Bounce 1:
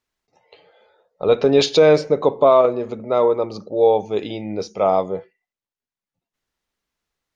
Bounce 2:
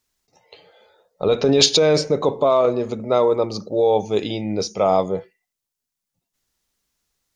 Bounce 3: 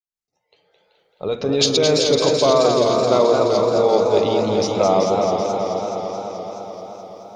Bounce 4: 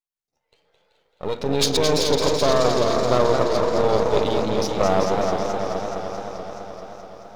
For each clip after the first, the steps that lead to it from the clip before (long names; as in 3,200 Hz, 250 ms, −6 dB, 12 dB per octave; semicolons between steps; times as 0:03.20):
in parallel at +1 dB: compressor whose output falls as the input rises −17 dBFS, ratio −1; on the sum: bass and treble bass +4 dB, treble +11 dB; level −7 dB
fade in at the beginning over 2.40 s; echo with a time of its own for lows and highs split 420 Hz, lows 172 ms, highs 382 ms, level −6.5 dB; feedback echo with a swinging delay time 214 ms, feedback 77%, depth 133 cents, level −5.5 dB
gain on one half-wave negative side −12 dB